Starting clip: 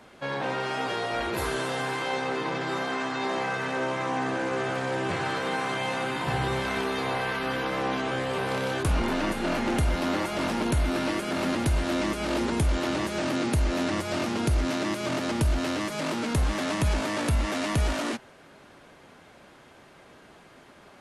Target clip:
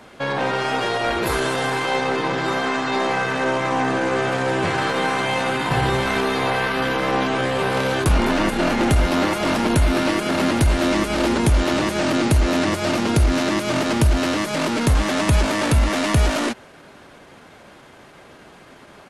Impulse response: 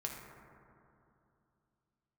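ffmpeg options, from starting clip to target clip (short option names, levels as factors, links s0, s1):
-af "aeval=exprs='0.158*(cos(1*acos(clip(val(0)/0.158,-1,1)))-cos(1*PI/2))+0.00141*(cos(4*acos(clip(val(0)/0.158,-1,1)))-cos(4*PI/2))+0.00316*(cos(6*acos(clip(val(0)/0.158,-1,1)))-cos(6*PI/2))+0.00251*(cos(7*acos(clip(val(0)/0.158,-1,1)))-cos(7*PI/2))':c=same,atempo=1.1,volume=2.51"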